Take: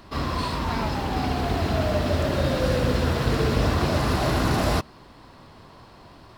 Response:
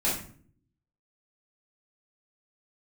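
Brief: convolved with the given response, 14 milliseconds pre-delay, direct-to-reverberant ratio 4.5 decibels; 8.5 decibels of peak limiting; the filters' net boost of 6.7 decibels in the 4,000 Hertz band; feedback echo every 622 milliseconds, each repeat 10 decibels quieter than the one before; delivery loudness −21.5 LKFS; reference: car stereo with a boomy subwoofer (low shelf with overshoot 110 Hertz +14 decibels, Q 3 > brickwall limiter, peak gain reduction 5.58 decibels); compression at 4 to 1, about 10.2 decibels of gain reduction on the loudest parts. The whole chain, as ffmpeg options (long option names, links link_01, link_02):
-filter_complex "[0:a]equalizer=frequency=4000:width_type=o:gain=8,acompressor=threshold=-30dB:ratio=4,alimiter=level_in=2.5dB:limit=-24dB:level=0:latency=1,volume=-2.5dB,aecho=1:1:622|1244|1866|2488:0.316|0.101|0.0324|0.0104,asplit=2[link_01][link_02];[1:a]atrim=start_sample=2205,adelay=14[link_03];[link_02][link_03]afir=irnorm=-1:irlink=0,volume=-14.5dB[link_04];[link_01][link_04]amix=inputs=2:normalize=0,lowshelf=frequency=110:width_type=q:width=3:gain=14,volume=2dB,alimiter=limit=-11.5dB:level=0:latency=1"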